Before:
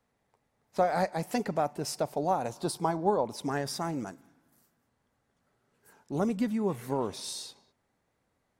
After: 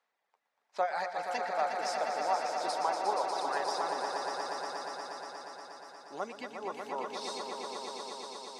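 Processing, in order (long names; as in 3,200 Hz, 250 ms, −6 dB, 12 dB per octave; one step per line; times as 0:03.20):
band-pass filter 750–5,300 Hz
reverb reduction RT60 1.5 s
echo that builds up and dies away 119 ms, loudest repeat 5, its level −7 dB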